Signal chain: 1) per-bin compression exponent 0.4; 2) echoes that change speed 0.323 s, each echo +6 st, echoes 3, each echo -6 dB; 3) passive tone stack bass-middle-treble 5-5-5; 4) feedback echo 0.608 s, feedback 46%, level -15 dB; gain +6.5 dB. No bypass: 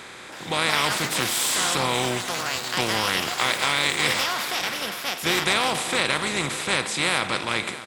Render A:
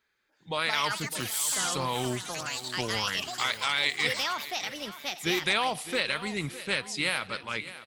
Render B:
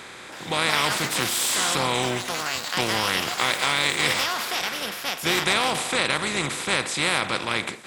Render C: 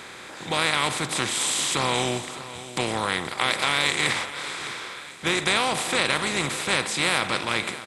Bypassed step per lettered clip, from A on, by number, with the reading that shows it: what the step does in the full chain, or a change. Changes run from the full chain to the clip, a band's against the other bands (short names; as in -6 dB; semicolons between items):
1, momentary loudness spread change +2 LU; 4, echo-to-direct -14.0 dB to none; 2, momentary loudness spread change +5 LU